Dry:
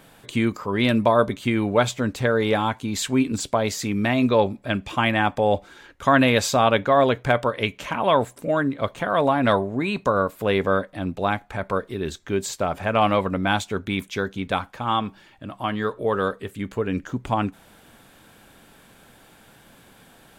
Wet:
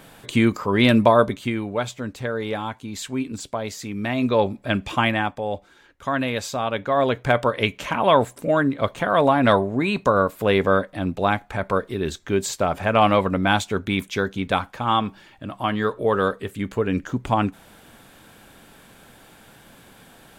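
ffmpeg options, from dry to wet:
ffmpeg -i in.wav -af "volume=22.5dB,afade=type=out:start_time=1:duration=0.65:silence=0.316228,afade=type=in:start_time=3.92:duration=0.97:silence=0.354813,afade=type=out:start_time=4.89:duration=0.48:silence=0.316228,afade=type=in:start_time=6.71:duration=0.82:silence=0.334965" out.wav

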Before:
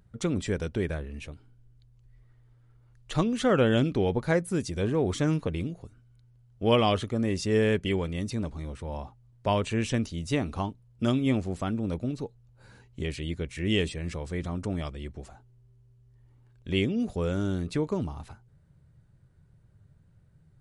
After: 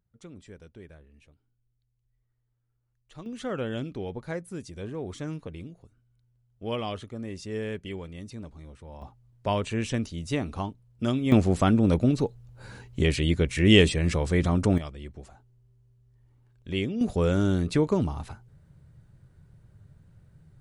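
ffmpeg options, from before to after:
ffmpeg -i in.wav -af "asetnsamples=nb_out_samples=441:pad=0,asendcmd='3.26 volume volume -9dB;9.02 volume volume -1dB;11.32 volume volume 9dB;14.78 volume volume -2.5dB;17.01 volume volume 5dB',volume=-18dB" out.wav

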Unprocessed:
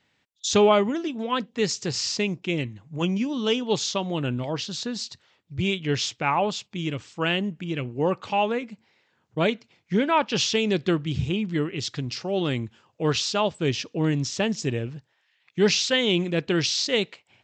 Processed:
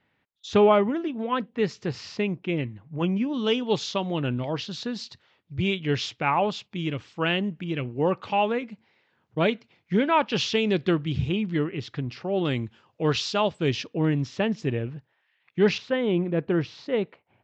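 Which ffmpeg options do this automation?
ffmpeg -i in.wav -af "asetnsamples=nb_out_samples=441:pad=0,asendcmd='3.34 lowpass f 3900;11.64 lowpass f 2300;12.45 lowpass f 4600;13.87 lowpass f 2600;15.78 lowpass f 1300',lowpass=2300" out.wav

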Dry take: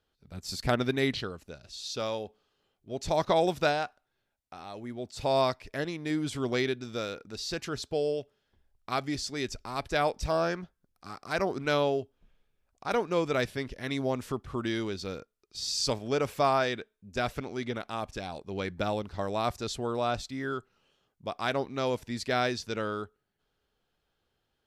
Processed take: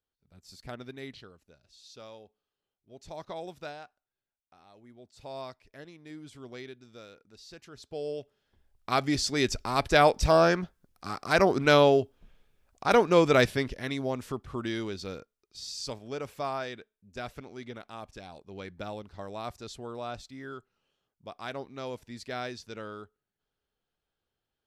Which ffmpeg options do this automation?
ffmpeg -i in.wav -af "volume=7dB,afade=type=in:start_time=7.74:duration=0.46:silence=0.281838,afade=type=in:start_time=8.2:duration=1.25:silence=0.298538,afade=type=out:start_time=13.44:duration=0.52:silence=0.375837,afade=type=out:start_time=15.16:duration=0.6:silence=0.473151" out.wav

